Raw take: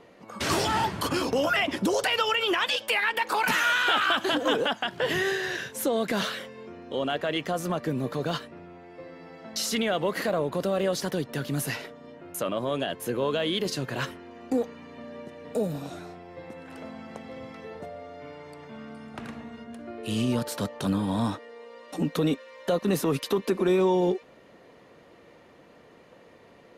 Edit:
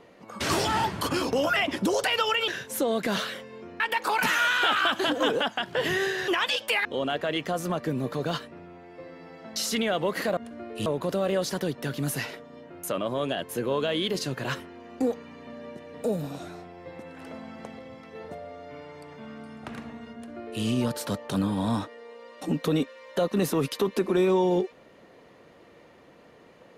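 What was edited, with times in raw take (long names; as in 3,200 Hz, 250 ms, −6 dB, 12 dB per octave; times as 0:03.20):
0:02.48–0:03.05: swap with 0:05.53–0:06.85
0:17.30–0:17.66: clip gain −3.5 dB
0:19.65–0:20.14: duplicate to 0:10.37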